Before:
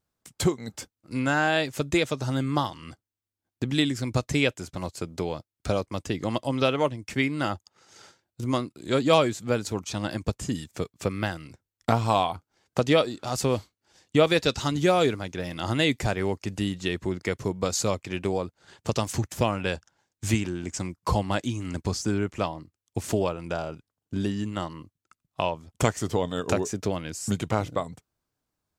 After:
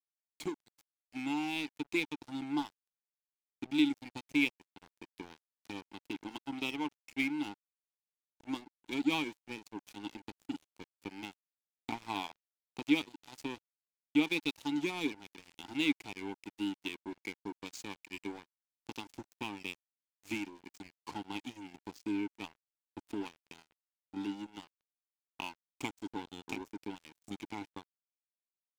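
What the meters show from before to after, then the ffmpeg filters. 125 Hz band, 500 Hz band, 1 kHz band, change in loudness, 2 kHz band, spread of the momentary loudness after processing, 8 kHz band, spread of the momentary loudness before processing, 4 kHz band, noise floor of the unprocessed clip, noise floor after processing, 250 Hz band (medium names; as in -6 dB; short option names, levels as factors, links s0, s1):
-24.5 dB, -20.0 dB, -15.0 dB, -11.0 dB, -8.5 dB, 18 LU, -18.5 dB, 12 LU, -10.0 dB, under -85 dBFS, under -85 dBFS, -7.5 dB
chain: -filter_complex "[0:a]asplit=3[s0][s1][s2];[s0]bandpass=f=300:t=q:w=8,volume=1[s3];[s1]bandpass=f=870:t=q:w=8,volume=0.501[s4];[s2]bandpass=f=2240:t=q:w=8,volume=0.355[s5];[s3][s4][s5]amix=inputs=3:normalize=0,aexciter=amount=4.6:drive=6.3:freq=2400,aeval=exprs='sgn(val(0))*max(abs(val(0))-0.00841,0)':c=same"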